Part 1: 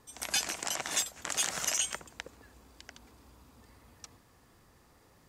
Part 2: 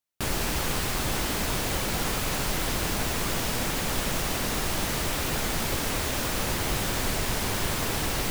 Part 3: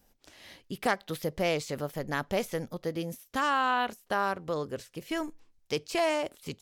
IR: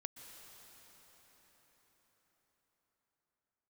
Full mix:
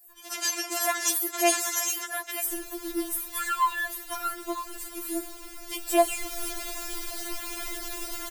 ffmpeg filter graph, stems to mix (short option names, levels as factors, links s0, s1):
-filter_complex "[0:a]acontrast=89,adelay=100,volume=0.794,asplit=2[s0][s1];[s1]volume=0.316[s2];[1:a]highshelf=f=6100:g=7,adelay=2250,volume=0.335,afade=t=in:st=5.76:d=0.73:silence=0.354813,asplit=2[s3][s4];[s4]volume=0.562[s5];[2:a]highpass=310,aexciter=amount=6.8:drive=6.9:freq=7800,volume=1.19,asplit=2[s6][s7];[s7]volume=0.211[s8];[3:a]atrim=start_sample=2205[s9];[s2][s5][s8]amix=inputs=3:normalize=0[s10];[s10][s9]afir=irnorm=-1:irlink=0[s11];[s0][s3][s6][s11]amix=inputs=4:normalize=0,afftfilt=real='re*4*eq(mod(b,16),0)':imag='im*4*eq(mod(b,16),0)':win_size=2048:overlap=0.75"